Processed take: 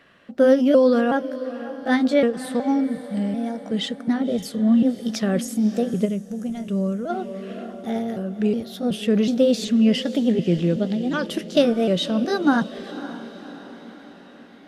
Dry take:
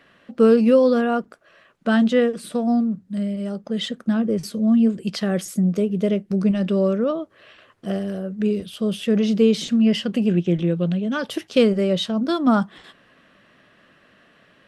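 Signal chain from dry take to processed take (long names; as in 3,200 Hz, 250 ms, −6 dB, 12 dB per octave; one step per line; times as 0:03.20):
pitch shifter gated in a rhythm +2.5 semitones, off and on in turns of 371 ms
feedback delay with all-pass diffusion 548 ms, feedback 54%, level −14 dB
gain on a spectral selection 0:06.05–0:07.10, 210–5,700 Hz −9 dB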